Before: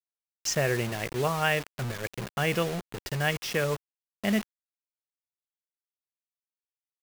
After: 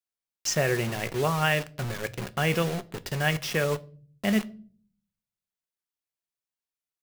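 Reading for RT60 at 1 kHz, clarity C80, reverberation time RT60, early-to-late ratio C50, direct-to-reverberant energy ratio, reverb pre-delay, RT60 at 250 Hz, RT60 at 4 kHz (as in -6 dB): 0.35 s, 26.5 dB, 0.45 s, 22.0 dB, 11.5 dB, 5 ms, 0.90 s, 0.35 s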